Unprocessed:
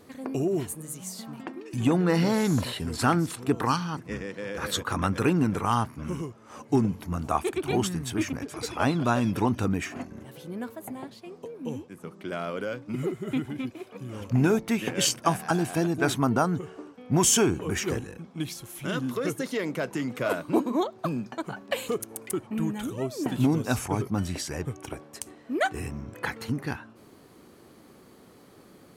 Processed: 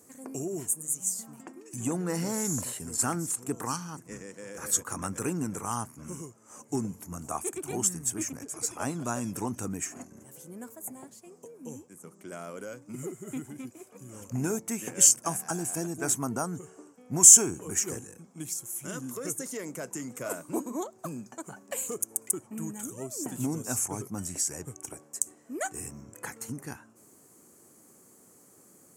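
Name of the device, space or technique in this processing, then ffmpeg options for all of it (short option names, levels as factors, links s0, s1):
budget condenser microphone: -af "highpass=100,highshelf=f=5300:t=q:w=3:g=12,volume=0.398"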